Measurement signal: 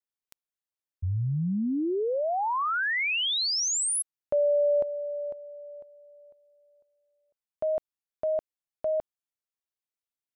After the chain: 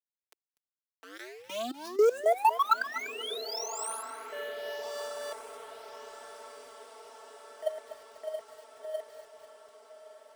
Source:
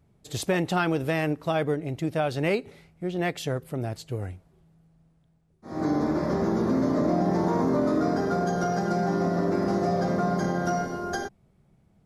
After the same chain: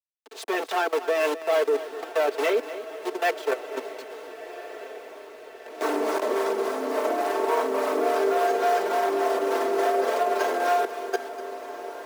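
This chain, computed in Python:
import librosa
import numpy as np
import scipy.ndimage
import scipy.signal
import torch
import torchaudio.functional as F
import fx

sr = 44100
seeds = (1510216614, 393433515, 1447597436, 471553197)

y = fx.delta_hold(x, sr, step_db=-33.0)
y = fx.leveller(y, sr, passes=3)
y = fx.high_shelf(y, sr, hz=4300.0, db=-9.0)
y = y + 0.87 * np.pad(y, (int(4.5 * sr / 1000.0), 0))[:len(y)]
y = fx.level_steps(y, sr, step_db=19)
y = scipy.signal.sosfilt(scipy.signal.cheby2(6, 70, 150.0, 'highpass', fs=sr, output='sos'), y)
y = fx.harmonic_tremolo(y, sr, hz=3.5, depth_pct=50, crossover_hz=520.0)
y = fx.echo_diffused(y, sr, ms=1378, feedback_pct=62, wet_db=-14.0)
y = fx.echo_crushed(y, sr, ms=246, feedback_pct=35, bits=8, wet_db=-14.0)
y = F.gain(torch.from_numpy(y), 1.0).numpy()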